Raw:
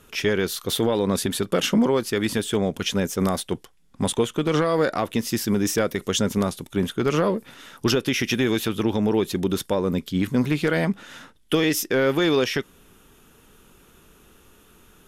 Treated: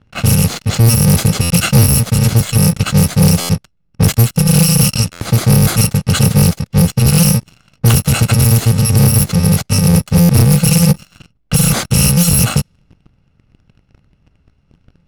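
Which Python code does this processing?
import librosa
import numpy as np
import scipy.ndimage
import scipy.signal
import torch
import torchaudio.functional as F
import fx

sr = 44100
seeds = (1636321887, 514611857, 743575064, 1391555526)

y = fx.bit_reversed(x, sr, seeds[0], block=128)
y = fx.peak_eq(y, sr, hz=130.0, db=11.5, octaves=2.4)
y = fx.env_lowpass(y, sr, base_hz=2300.0, full_db=-14.0)
y = fx.low_shelf(y, sr, hz=340.0, db=3.5)
y = fx.leveller(y, sr, passes=3)
y = fx.buffer_glitch(y, sr, at_s=(1.41, 3.4, 5.12, 10.2), block=512, repeats=7)
y = fx.doppler_dist(y, sr, depth_ms=0.15)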